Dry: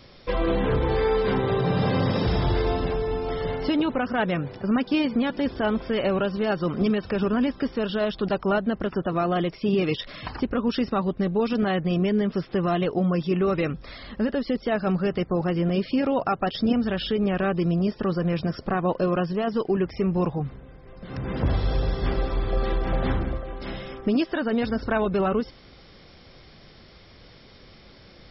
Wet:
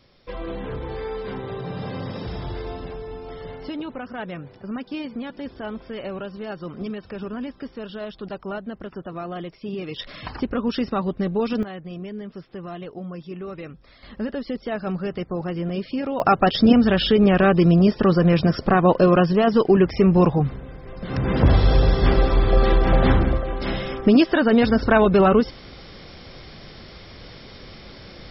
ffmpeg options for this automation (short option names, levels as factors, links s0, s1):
-af "asetnsamples=n=441:p=0,asendcmd='9.96 volume volume 0.5dB;11.63 volume volume -11dB;14.03 volume volume -3dB;16.2 volume volume 8dB',volume=0.398"